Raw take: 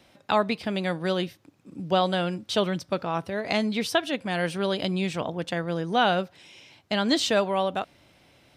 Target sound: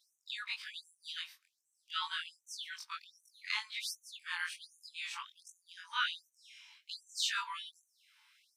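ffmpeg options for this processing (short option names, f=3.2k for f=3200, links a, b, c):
-af "afftfilt=real='re':imag='-im':win_size=2048:overlap=0.75,afftfilt=real='re*gte(b*sr/1024,820*pow(5900/820,0.5+0.5*sin(2*PI*1.3*pts/sr)))':imag='im*gte(b*sr/1024,820*pow(5900/820,0.5+0.5*sin(2*PI*1.3*pts/sr)))':win_size=1024:overlap=0.75,volume=-1.5dB"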